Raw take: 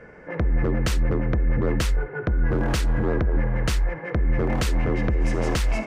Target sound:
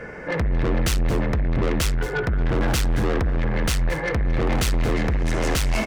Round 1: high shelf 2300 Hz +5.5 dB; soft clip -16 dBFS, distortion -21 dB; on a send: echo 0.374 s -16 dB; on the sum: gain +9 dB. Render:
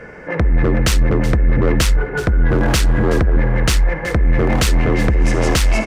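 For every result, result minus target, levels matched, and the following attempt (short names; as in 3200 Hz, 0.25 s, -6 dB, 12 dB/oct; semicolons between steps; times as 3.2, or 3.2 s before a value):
echo 0.15 s late; soft clip: distortion -13 dB
high shelf 2300 Hz +5.5 dB; soft clip -16 dBFS, distortion -21 dB; on a send: echo 0.224 s -16 dB; on the sum: gain +9 dB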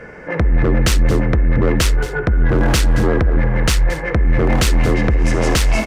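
soft clip: distortion -13 dB
high shelf 2300 Hz +5.5 dB; soft clip -28 dBFS, distortion -9 dB; on a send: echo 0.224 s -16 dB; on the sum: gain +9 dB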